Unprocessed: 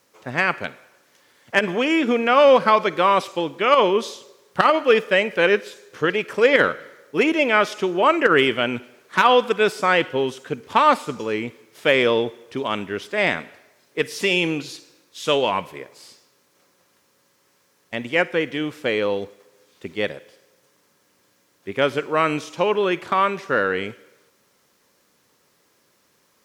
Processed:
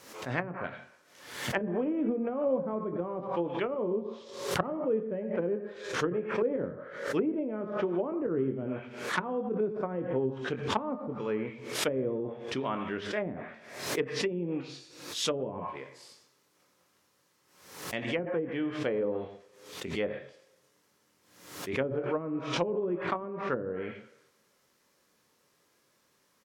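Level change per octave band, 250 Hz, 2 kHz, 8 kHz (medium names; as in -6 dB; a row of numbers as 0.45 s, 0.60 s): -7.5 dB, -17.0 dB, -3.5 dB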